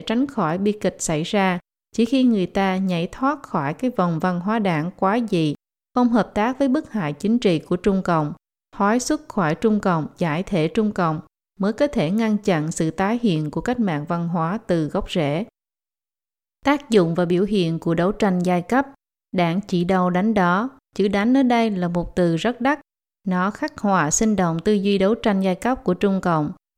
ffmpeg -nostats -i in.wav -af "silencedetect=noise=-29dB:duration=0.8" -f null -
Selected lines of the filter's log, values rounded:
silence_start: 15.43
silence_end: 16.66 | silence_duration: 1.22